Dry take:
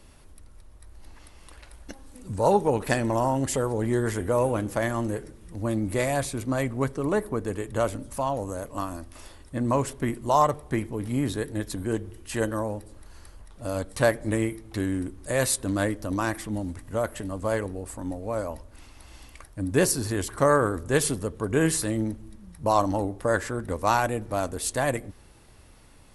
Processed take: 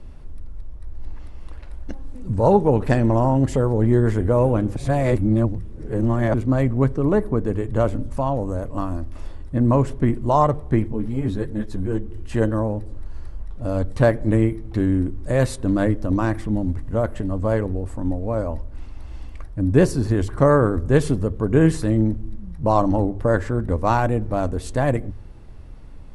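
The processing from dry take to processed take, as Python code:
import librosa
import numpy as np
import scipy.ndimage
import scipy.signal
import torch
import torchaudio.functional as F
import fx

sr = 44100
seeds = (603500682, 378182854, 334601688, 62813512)

y = fx.ensemble(x, sr, at=(10.88, 12.11))
y = fx.edit(y, sr, fx.reverse_span(start_s=4.76, length_s=1.58), tone=tone)
y = scipy.signal.sosfilt(scipy.signal.bessel(2, 8500.0, 'lowpass', norm='mag', fs=sr, output='sos'), y)
y = fx.tilt_eq(y, sr, slope=-3.0)
y = fx.hum_notches(y, sr, base_hz=50, count=2)
y = y * 10.0 ** (2.0 / 20.0)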